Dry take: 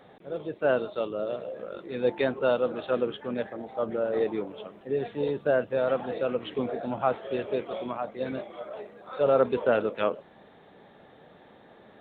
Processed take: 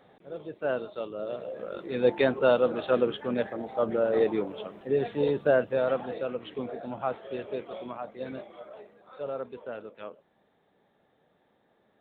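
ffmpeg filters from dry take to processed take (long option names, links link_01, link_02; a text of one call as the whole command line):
ffmpeg -i in.wav -af "volume=2.5dB,afade=type=in:start_time=1.14:duration=0.74:silence=0.421697,afade=type=out:start_time=5.37:duration=0.96:silence=0.421697,afade=type=out:start_time=8.45:duration=1.02:silence=0.316228" out.wav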